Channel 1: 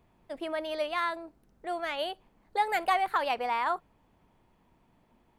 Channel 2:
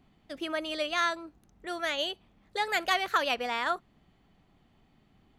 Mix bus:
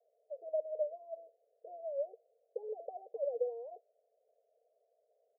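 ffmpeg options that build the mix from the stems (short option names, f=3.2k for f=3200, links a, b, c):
-filter_complex "[0:a]volume=-2.5dB,asplit=2[a][b];[1:a]volume=-1,adelay=1,volume=1.5dB[c];[b]apad=whole_len=237534[d];[c][d]sidechaincompress=threshold=-35dB:ratio=5:attack=39:release=108[e];[a][e]amix=inputs=2:normalize=0,asuperpass=centerf=550:order=12:qfactor=2.2"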